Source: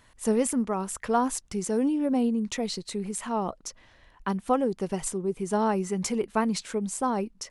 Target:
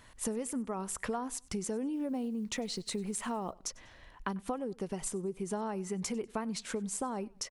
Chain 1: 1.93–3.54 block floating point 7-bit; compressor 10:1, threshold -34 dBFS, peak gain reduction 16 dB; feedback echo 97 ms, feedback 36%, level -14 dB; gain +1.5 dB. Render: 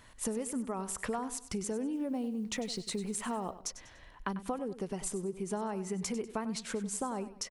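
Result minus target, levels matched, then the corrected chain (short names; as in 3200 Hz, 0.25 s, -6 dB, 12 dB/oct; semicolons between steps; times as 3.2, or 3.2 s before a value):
echo-to-direct +10.5 dB
1.93–3.54 block floating point 7-bit; compressor 10:1, threshold -34 dBFS, peak gain reduction 16 dB; feedback echo 97 ms, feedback 36%, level -24.5 dB; gain +1.5 dB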